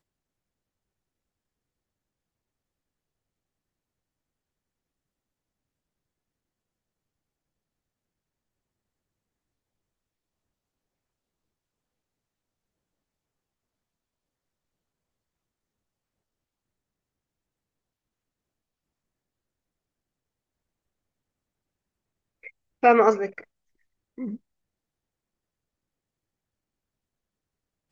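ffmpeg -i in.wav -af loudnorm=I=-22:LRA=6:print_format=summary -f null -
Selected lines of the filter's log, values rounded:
Input Integrated:    -20.7 LUFS
Input True Peak:      -3.9 dBTP
Input LRA:            18.6 LU
Input Threshold:     -34.6 LUFS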